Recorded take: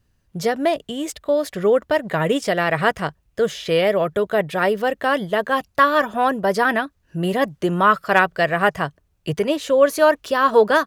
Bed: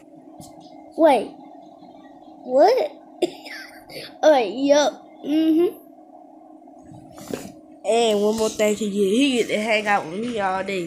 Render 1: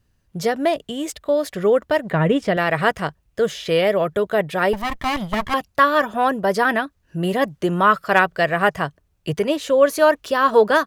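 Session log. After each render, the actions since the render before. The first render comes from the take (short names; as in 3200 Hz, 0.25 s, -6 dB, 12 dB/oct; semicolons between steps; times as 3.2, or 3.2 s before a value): 2.11–2.57 tone controls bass +7 dB, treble -12 dB; 4.73–5.54 minimum comb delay 1 ms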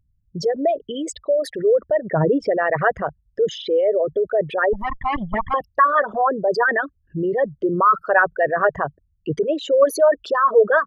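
formant sharpening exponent 3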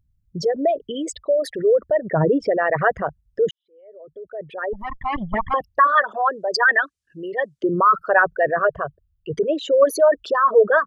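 3.51–5.31 fade in quadratic; 5.87–7.64 weighting filter ITU-R 468; 8.59–9.34 fixed phaser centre 1300 Hz, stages 8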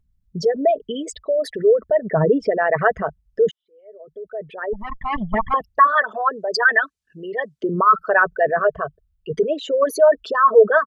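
high shelf 5700 Hz -3.5 dB; comb 4.6 ms, depth 44%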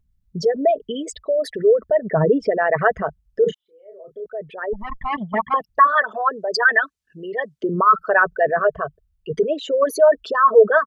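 3.41–4.26 doubler 31 ms -5 dB; 5.11–5.69 HPF 190 Hz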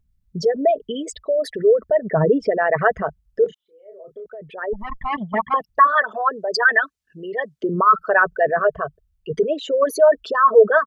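3.46–4.42 compressor 10:1, threshold -31 dBFS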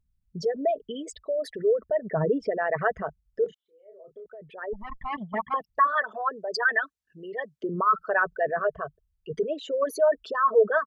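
gain -8 dB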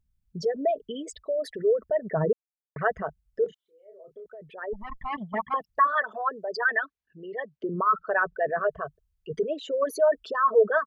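2.33–2.76 mute; 6.51–8.49 air absorption 150 m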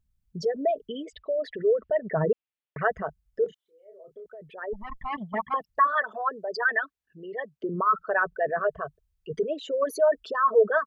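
1.04–2.86 synth low-pass 2900 Hz, resonance Q 2.1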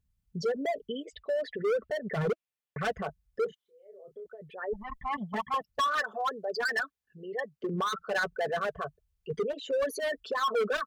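hard clip -24.5 dBFS, distortion -7 dB; notch comb 320 Hz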